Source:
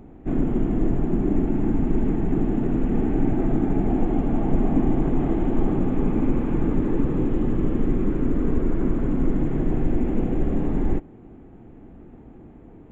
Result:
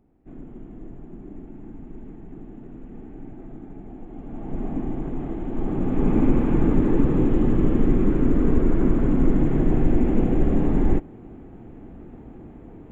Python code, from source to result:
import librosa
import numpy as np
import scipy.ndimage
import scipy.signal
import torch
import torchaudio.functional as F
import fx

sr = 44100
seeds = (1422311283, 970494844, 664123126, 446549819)

y = fx.gain(x, sr, db=fx.line((4.06, -18.0), (4.63, -7.5), (5.45, -7.5), (6.14, 3.0)))